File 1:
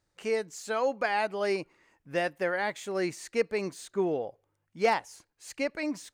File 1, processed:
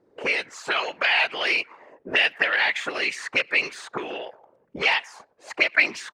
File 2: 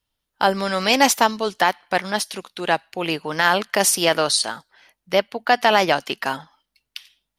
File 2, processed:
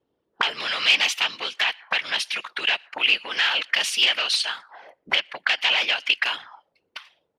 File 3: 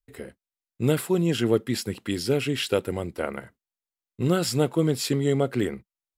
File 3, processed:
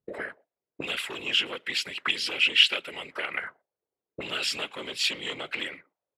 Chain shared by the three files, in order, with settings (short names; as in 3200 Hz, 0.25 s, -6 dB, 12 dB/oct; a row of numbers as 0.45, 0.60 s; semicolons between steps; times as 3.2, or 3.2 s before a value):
compressor 2:1, threshold -35 dBFS; whisperiser; sine folder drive 9 dB, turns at -14.5 dBFS; speakerphone echo 0.12 s, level -29 dB; auto-wah 400–2800 Hz, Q 3.3, up, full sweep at -20.5 dBFS; normalise peaks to -6 dBFS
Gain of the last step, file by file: +14.5, +8.5, +8.5 dB